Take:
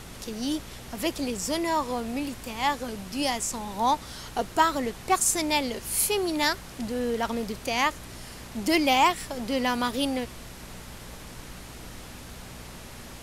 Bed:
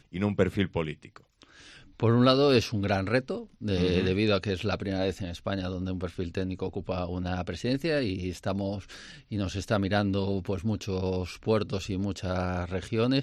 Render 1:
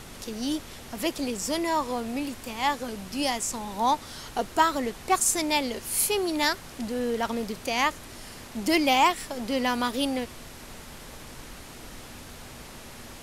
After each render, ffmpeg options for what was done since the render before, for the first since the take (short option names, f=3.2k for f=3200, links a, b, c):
-af "bandreject=f=60:t=h:w=4,bandreject=f=120:t=h:w=4,bandreject=f=180:t=h:w=4"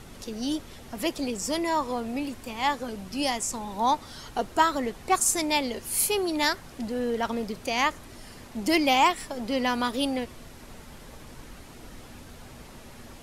-af "afftdn=nr=6:nf=-44"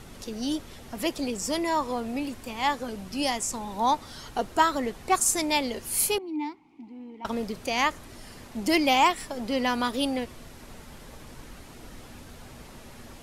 -filter_complex "[0:a]asettb=1/sr,asplit=3[a][b][c];[a]atrim=end=6.184[d];[b]atrim=start=6.18:end=7.25,asetpts=PTS-STARTPTS,afade=t=in:d=0.004:c=qsin,afade=t=out:st=1.066:d=0.004:c=qsin,asplit=3[e][f][g];[e]bandpass=f=300:t=q:w=8,volume=0dB[h];[f]bandpass=f=870:t=q:w=8,volume=-6dB[i];[g]bandpass=f=2.24k:t=q:w=8,volume=-9dB[j];[h][i][j]amix=inputs=3:normalize=0[k];[c]atrim=start=7.246[l];[d][k]acrossfade=d=0.004:c1=hsin:c2=qsin[m];[m][l]acrossfade=d=0.004:c1=qsin:c2=hsin"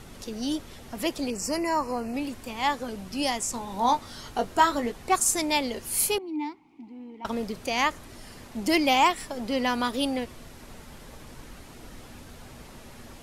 -filter_complex "[0:a]asettb=1/sr,asplit=3[a][b][c];[a]atrim=end=1.304[d];[b]atrim=start=1.3:end=2.14,asetpts=PTS-STARTPTS,afade=t=in:d=0.004:c=qsin,afade=t=out:st=0.836:d=0.004:c=qsin,asuperstop=centerf=3500:order=8:qfactor=3[e];[c]atrim=start=2.136[f];[d][e]acrossfade=d=0.004:c1=hsin:c2=qsin[g];[g][f]acrossfade=d=0.004:c1=qsin:c2=hsin,asettb=1/sr,asplit=3[h][i][j];[h]atrim=end=3.524[k];[i]atrim=start=3.52:end=4.92,asetpts=PTS-STARTPTS,afade=t=in:d=0.004:c=qsin,afade=t=out:st=1.396:d=0.004:c=qsin,asplit=2[l][m];[m]adelay=21,volume=-8dB[n];[l][n]amix=inputs=2:normalize=0,atrim=end_sample=61740[o];[j]atrim=start=4.916[p];[k][o]acrossfade=d=0.004:c1=hsin:c2=qsin[q];[q][p]acrossfade=d=0.004:c1=qsin:c2=hsin"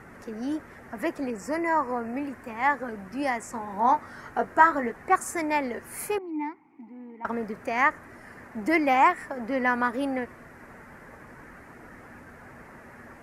-af "highpass=f=140:p=1,highshelf=f=2.5k:t=q:w=3:g=-11.5"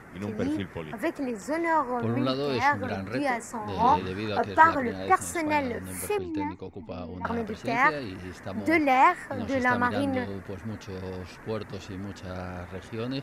-filter_complex "[1:a]volume=-7dB[a];[0:a][a]amix=inputs=2:normalize=0"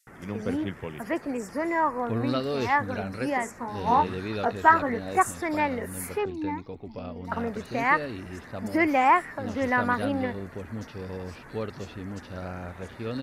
-filter_complex "[0:a]acrossover=split=4400[a][b];[a]adelay=70[c];[c][b]amix=inputs=2:normalize=0"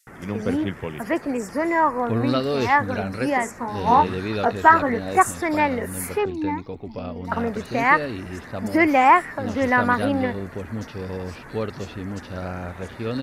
-af "volume=5.5dB,alimiter=limit=-1dB:level=0:latency=1"